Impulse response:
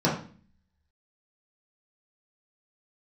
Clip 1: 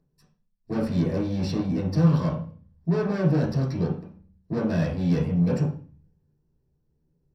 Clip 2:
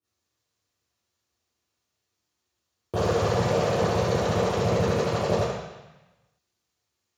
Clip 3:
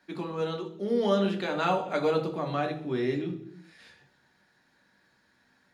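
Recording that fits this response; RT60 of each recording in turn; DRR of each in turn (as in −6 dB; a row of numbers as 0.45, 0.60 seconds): 1; 0.40, 1.0, 0.65 seconds; −7.0, −16.5, 2.5 decibels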